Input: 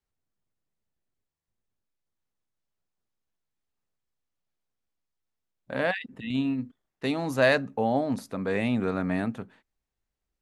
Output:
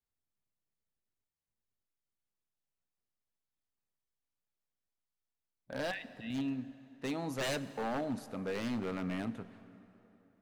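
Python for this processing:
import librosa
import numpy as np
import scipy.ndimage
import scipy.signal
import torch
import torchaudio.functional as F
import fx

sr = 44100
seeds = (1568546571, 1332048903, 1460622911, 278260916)

y = 10.0 ** (-21.5 / 20.0) * (np.abs((x / 10.0 ** (-21.5 / 20.0) + 3.0) % 4.0 - 2.0) - 1.0)
y = fx.rev_plate(y, sr, seeds[0], rt60_s=3.4, hf_ratio=0.7, predelay_ms=0, drr_db=14.0)
y = y * librosa.db_to_amplitude(-8.0)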